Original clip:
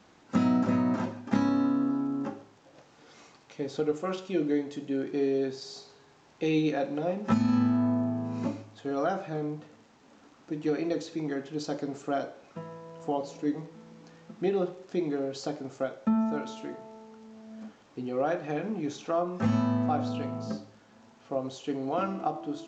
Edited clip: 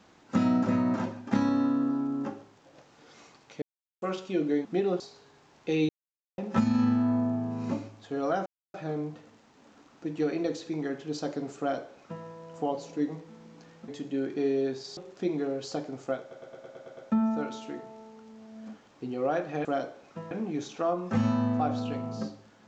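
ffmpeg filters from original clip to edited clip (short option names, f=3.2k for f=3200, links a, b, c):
-filter_complex "[0:a]asplit=19[a][b][c][d][e][f][g][h][i][j][k][l][m][n][o][p][q][r][s];[a]atrim=end=3.62,asetpts=PTS-STARTPTS,afade=t=out:st=3.616:d=0.004:c=hsin[t];[b]atrim=start=3.62:end=4.02,asetpts=PTS-STARTPTS,volume=0[u];[c]atrim=start=4.02:end=4.652,asetpts=PTS-STARTPTS,afade=t=in:d=0.004:c=hsin[v];[d]atrim=start=14.338:end=14.692[w];[e]atrim=start=5.738:end=6.63,asetpts=PTS-STARTPTS,afade=t=out:st=0.888:d=0.004:c=hsin[x];[f]atrim=start=6.63:end=7.12,asetpts=PTS-STARTPTS,volume=0[y];[g]atrim=start=7.12:end=9.2,asetpts=PTS-STARTPTS,afade=t=in:d=0.004:c=hsin,afade=t=out:st=2.076:d=0.004:c=hsin,apad=pad_dur=0.28[z];[h]atrim=start=9.2:end=14.342,asetpts=PTS-STARTPTS,afade=t=in:d=0.004:c=hsin[aa];[i]atrim=start=4.648:end=5.742[ab];[j]atrim=start=14.688:end=16.032[ac];[k]atrim=start=15.918:end=16.032[ad];[l]atrim=start=15.918:end=16.032[ae];[m]atrim=start=15.918:end=16.032[af];[n]atrim=start=15.918:end=16.032[ag];[o]atrim=start=15.918:end=16.032[ah];[p]atrim=start=15.918:end=16.032[ai];[q]atrim=start=15.918:end=18.602[aj];[r]atrim=start=12.048:end=12.712[ak];[s]atrim=start=18.598[al];[t][u][v]concat=n=3:v=0:a=1[am];[am][w]acrossfade=d=0.004:c1=hsin:c2=hsin[an];[x][y][z][aa]concat=n=4:v=0:a=1[ao];[an][ao]acrossfade=d=0.004:c1=hsin:c2=hsin[ap];[ap][ab]acrossfade=d=0.004:c1=hsin:c2=hsin[aq];[aq][ac]acrossfade=d=0.004:c1=hsin:c2=hsin[ar];[ar][ad]acrossfade=d=0.004:c1=hsin:c2=hsin[as];[as][ae]acrossfade=d=0.004:c1=hsin:c2=hsin[at];[at][af]acrossfade=d=0.004:c1=hsin:c2=hsin[au];[au][ag]acrossfade=d=0.004:c1=hsin:c2=hsin[av];[av][ah]acrossfade=d=0.004:c1=hsin:c2=hsin[aw];[aw][ai]acrossfade=d=0.004:c1=hsin:c2=hsin[ax];[ax][aj]acrossfade=d=0.004:c1=hsin:c2=hsin[ay];[ay][ak]acrossfade=d=0.004:c1=hsin:c2=hsin[az];[az][al]acrossfade=d=0.004:c1=hsin:c2=hsin"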